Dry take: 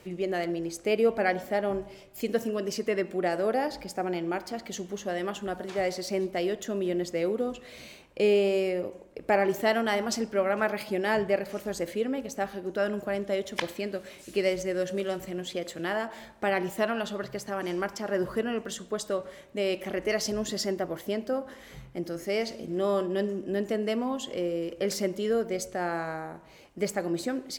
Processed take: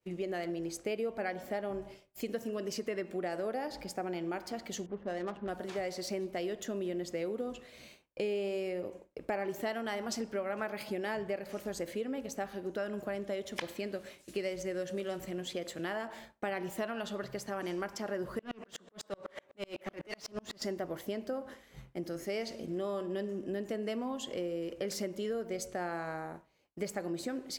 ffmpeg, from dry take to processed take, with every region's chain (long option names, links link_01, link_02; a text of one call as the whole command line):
ffmpeg -i in.wav -filter_complex "[0:a]asettb=1/sr,asplit=3[link_01][link_02][link_03];[link_01]atrim=end=4.864[link_04];[link_02]atrim=start=4.86:end=5.49,asetpts=PTS-STARTPTS,afade=type=in:duration=0.004:curve=qsin,afade=type=out:start_time=0.626:duration=0.004:curve=qsin,lowpass=2300,adynamicsmooth=sensitivity=7.5:basefreq=720[link_05];[link_03]atrim=start=5.486[link_06];[link_04][link_05]acrossfade=duration=0.004:curve1=hsin:curve2=qsin[link_07];[link_07][link_06]acrossfade=duration=0.004:curve1=qsin:curve2=hsin,asettb=1/sr,asplit=3[link_08][link_09][link_10];[link_08]atrim=end=18.394[link_11];[link_09]atrim=start=18.39:end=20.62,asetpts=PTS-STARTPTS,afade=type=in:duration=0.004:curve=qsin,afade=type=out:start_time=2.226:duration=0.004:curve=qsin,acrossover=split=230|3000[link_12][link_13][link_14];[link_13]acompressor=threshold=-39dB:ratio=6:attack=3.2:release=140:knee=2.83:detection=peak[link_15];[link_12][link_15][link_14]amix=inputs=3:normalize=0,asplit=2[link_16][link_17];[link_17]highpass=frequency=720:poles=1,volume=25dB,asoftclip=type=tanh:threshold=-18.5dB[link_18];[link_16][link_18]amix=inputs=2:normalize=0,lowpass=frequency=1500:poles=1,volume=-6dB,aeval=exprs='val(0)*pow(10,-36*if(lt(mod(-8*n/s,1),2*abs(-8)/1000),1-mod(-8*n/s,1)/(2*abs(-8)/1000),(mod(-8*n/s,1)-2*abs(-8)/1000)/(1-2*abs(-8)/1000))/20)':channel_layout=same[link_19];[link_10]atrim=start=20.616[link_20];[link_11][link_19]acrossfade=duration=0.004:curve1=hsin:curve2=qsin[link_21];[link_21][link_20]acrossfade=duration=0.004:curve1=qsin:curve2=hsin,agate=range=-33dB:threshold=-41dB:ratio=3:detection=peak,acompressor=threshold=-30dB:ratio=4,volume=-3dB" out.wav